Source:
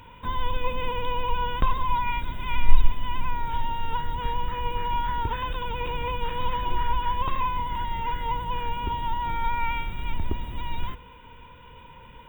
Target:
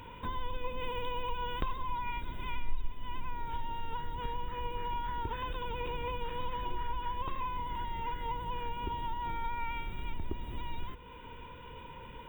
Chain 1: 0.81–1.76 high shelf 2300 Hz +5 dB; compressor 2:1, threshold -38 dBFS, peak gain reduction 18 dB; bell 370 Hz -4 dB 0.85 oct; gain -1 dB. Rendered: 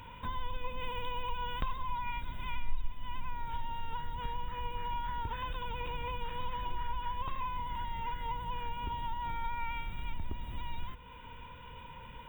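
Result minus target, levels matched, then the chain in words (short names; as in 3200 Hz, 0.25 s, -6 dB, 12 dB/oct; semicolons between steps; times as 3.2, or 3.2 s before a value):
500 Hz band -4.5 dB
0.81–1.76 high shelf 2300 Hz +5 dB; compressor 2:1, threshold -38 dBFS, peak gain reduction 18 dB; bell 370 Hz +5.5 dB 0.85 oct; gain -1 dB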